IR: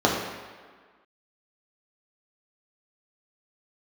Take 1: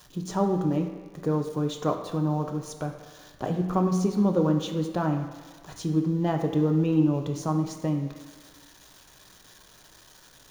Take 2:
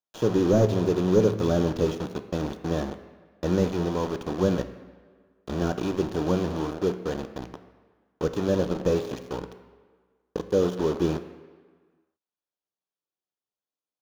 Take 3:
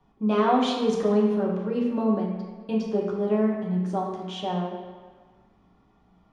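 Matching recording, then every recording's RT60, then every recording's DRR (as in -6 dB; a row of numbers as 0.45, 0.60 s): 3; 1.6, 1.6, 1.6 s; 3.0, 8.5, -3.5 dB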